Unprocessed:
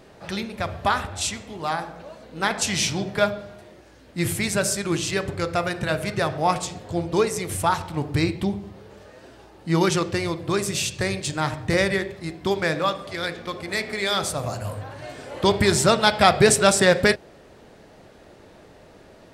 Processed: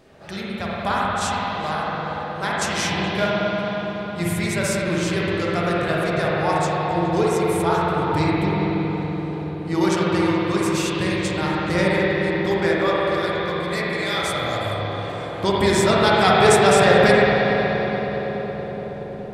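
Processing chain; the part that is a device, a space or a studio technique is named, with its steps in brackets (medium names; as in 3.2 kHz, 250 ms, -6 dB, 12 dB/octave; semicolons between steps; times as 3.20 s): dub delay into a spring reverb (filtered feedback delay 421 ms, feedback 79%, low-pass 1.1 kHz, level -8 dB; spring tank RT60 3.9 s, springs 46/58 ms, chirp 50 ms, DRR -6 dB); trim -4 dB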